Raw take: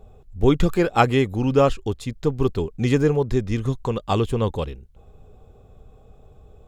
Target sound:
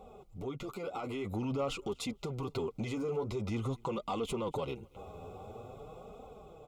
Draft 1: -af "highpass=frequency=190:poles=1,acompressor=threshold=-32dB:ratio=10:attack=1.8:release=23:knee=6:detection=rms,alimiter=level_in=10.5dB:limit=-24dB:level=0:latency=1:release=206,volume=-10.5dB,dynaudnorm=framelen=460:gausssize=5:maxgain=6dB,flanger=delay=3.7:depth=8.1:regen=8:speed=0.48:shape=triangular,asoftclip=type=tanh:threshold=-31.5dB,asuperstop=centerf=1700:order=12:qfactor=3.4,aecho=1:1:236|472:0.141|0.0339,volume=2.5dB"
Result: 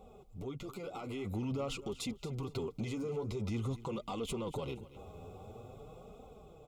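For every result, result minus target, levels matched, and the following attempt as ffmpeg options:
echo-to-direct +10.5 dB; downward compressor: peak gain reduction +6 dB; 1,000 Hz band −3.5 dB
-af "highpass=frequency=190:poles=1,acompressor=threshold=-32dB:ratio=10:attack=1.8:release=23:knee=6:detection=rms,alimiter=level_in=10.5dB:limit=-24dB:level=0:latency=1:release=206,volume=-10.5dB,dynaudnorm=framelen=460:gausssize=5:maxgain=6dB,flanger=delay=3.7:depth=8.1:regen=8:speed=0.48:shape=triangular,asoftclip=type=tanh:threshold=-31.5dB,asuperstop=centerf=1700:order=12:qfactor=3.4,aecho=1:1:236|472:0.0422|0.0101,volume=2.5dB"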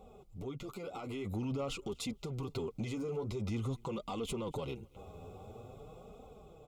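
downward compressor: peak gain reduction +6 dB; 1,000 Hz band −3.5 dB
-af "highpass=frequency=190:poles=1,acompressor=threshold=-25.5dB:ratio=10:attack=1.8:release=23:knee=6:detection=rms,alimiter=level_in=10.5dB:limit=-24dB:level=0:latency=1:release=206,volume=-10.5dB,dynaudnorm=framelen=460:gausssize=5:maxgain=6dB,flanger=delay=3.7:depth=8.1:regen=8:speed=0.48:shape=triangular,asoftclip=type=tanh:threshold=-31.5dB,asuperstop=centerf=1700:order=12:qfactor=3.4,aecho=1:1:236|472:0.0422|0.0101,volume=2.5dB"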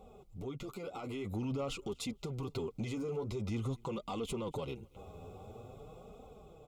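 1,000 Hz band −3.0 dB
-af "highpass=frequency=190:poles=1,acompressor=threshold=-25.5dB:ratio=10:attack=1.8:release=23:knee=6:detection=rms,alimiter=level_in=10.5dB:limit=-24dB:level=0:latency=1:release=206,volume=-10.5dB,dynaudnorm=framelen=460:gausssize=5:maxgain=6dB,flanger=delay=3.7:depth=8.1:regen=8:speed=0.48:shape=triangular,asoftclip=type=tanh:threshold=-31.5dB,asuperstop=centerf=1700:order=12:qfactor=3.4,equalizer=frequency=990:width_type=o:width=2.9:gain=5.5,aecho=1:1:236|472:0.0422|0.0101,volume=2.5dB"

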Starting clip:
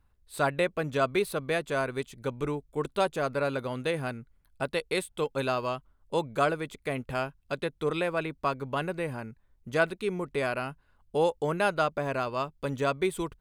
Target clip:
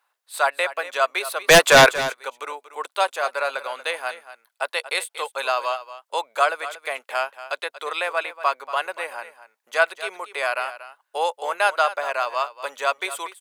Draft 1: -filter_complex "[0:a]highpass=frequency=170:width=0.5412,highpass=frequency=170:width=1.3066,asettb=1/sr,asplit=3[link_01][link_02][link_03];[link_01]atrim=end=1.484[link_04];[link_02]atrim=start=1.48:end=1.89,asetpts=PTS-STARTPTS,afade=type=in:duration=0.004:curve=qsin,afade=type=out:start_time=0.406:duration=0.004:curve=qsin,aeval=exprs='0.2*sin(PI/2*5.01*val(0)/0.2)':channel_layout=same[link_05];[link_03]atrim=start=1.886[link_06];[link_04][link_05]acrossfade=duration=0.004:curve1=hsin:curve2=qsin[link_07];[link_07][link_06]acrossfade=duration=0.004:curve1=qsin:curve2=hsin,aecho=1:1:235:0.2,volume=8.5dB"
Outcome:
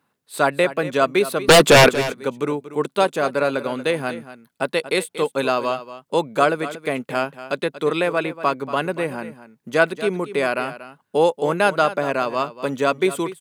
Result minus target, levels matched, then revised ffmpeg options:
125 Hz band +8.5 dB
-filter_complex "[0:a]highpass=frequency=660:width=0.5412,highpass=frequency=660:width=1.3066,asettb=1/sr,asplit=3[link_01][link_02][link_03];[link_01]atrim=end=1.484[link_04];[link_02]atrim=start=1.48:end=1.89,asetpts=PTS-STARTPTS,afade=type=in:duration=0.004:curve=qsin,afade=type=out:start_time=0.406:duration=0.004:curve=qsin,aeval=exprs='0.2*sin(PI/2*5.01*val(0)/0.2)':channel_layout=same[link_05];[link_03]atrim=start=1.886[link_06];[link_04][link_05]acrossfade=duration=0.004:curve1=hsin:curve2=qsin[link_07];[link_07][link_06]acrossfade=duration=0.004:curve1=qsin:curve2=hsin,aecho=1:1:235:0.2,volume=8.5dB"

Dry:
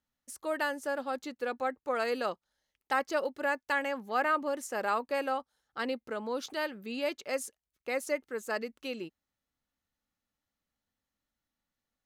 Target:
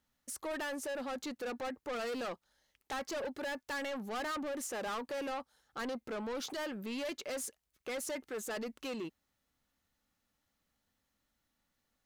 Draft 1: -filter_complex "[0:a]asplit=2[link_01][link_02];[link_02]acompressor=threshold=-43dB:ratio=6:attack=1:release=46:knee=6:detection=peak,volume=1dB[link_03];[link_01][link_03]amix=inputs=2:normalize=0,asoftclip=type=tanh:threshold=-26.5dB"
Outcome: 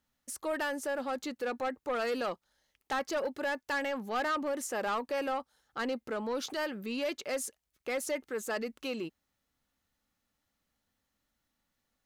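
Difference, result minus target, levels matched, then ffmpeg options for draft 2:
soft clipping: distortion −7 dB
-filter_complex "[0:a]asplit=2[link_01][link_02];[link_02]acompressor=threshold=-43dB:ratio=6:attack=1:release=46:knee=6:detection=peak,volume=1dB[link_03];[link_01][link_03]amix=inputs=2:normalize=0,asoftclip=type=tanh:threshold=-35.5dB"

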